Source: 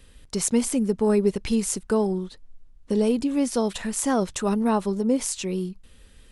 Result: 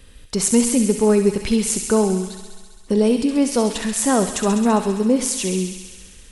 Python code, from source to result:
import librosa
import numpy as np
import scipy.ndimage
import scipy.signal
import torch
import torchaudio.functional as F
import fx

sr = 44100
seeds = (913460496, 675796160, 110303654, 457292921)

y = fx.echo_wet_highpass(x, sr, ms=67, feedback_pct=80, hz=2000.0, wet_db=-6)
y = fx.rev_spring(y, sr, rt60_s=1.1, pass_ms=(42, 59), chirp_ms=25, drr_db=12.0)
y = y * librosa.db_to_amplitude(5.0)